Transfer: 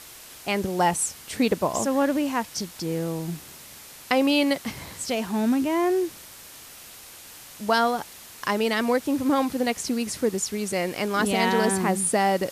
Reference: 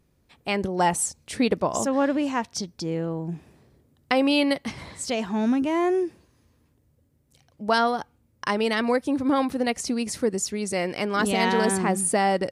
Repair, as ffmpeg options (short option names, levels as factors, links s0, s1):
-af "afwtdn=0.0071"